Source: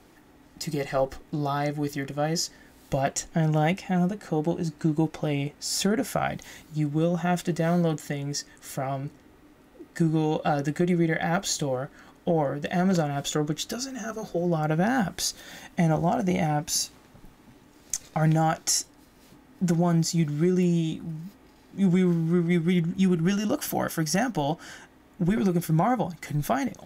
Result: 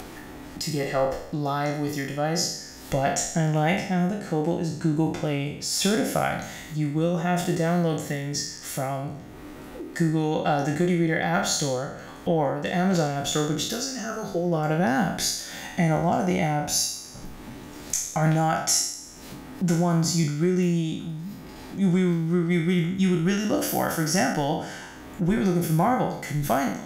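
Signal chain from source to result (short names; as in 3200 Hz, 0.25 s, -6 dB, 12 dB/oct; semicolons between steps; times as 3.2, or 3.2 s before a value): spectral trails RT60 0.67 s; upward compressor, threshold -28 dBFS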